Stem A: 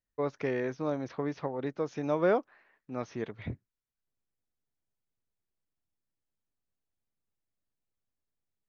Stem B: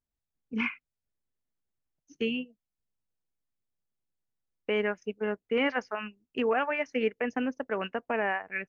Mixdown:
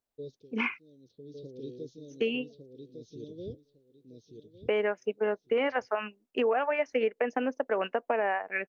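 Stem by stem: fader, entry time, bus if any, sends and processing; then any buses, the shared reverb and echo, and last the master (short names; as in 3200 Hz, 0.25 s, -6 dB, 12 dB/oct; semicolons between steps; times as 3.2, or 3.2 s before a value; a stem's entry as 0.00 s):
-3.5 dB, 0.00 s, no send, echo send -5 dB, elliptic band-stop 450–3700 Hz, stop band 40 dB; bell 3800 Hz +7 dB 0.7 oct; flange 0.28 Hz, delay 0.8 ms, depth 6.2 ms, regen -77%; auto duck -19 dB, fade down 0.20 s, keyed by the second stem
+1.0 dB, 0.00 s, no send, no echo send, HPF 240 Hz 12 dB/oct; bell 610 Hz +7.5 dB 1.5 oct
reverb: off
echo: feedback echo 1.155 s, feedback 20%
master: compressor 5:1, threshold -24 dBFS, peak gain reduction 7 dB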